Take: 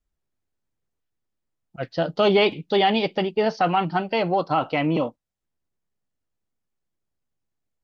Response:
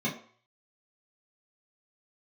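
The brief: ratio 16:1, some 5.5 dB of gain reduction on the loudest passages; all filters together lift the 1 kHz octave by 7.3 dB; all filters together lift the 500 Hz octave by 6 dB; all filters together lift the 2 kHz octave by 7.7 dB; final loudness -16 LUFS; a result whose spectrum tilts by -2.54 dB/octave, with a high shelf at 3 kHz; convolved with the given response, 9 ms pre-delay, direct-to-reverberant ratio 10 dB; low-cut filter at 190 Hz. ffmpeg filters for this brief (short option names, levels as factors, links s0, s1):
-filter_complex "[0:a]highpass=190,equalizer=f=500:t=o:g=6,equalizer=f=1000:t=o:g=6,equalizer=f=2000:t=o:g=5,highshelf=f=3000:g=7,acompressor=threshold=0.224:ratio=16,asplit=2[s0][s1];[1:a]atrim=start_sample=2205,adelay=9[s2];[s1][s2]afir=irnorm=-1:irlink=0,volume=0.126[s3];[s0][s3]amix=inputs=2:normalize=0,volume=1.41"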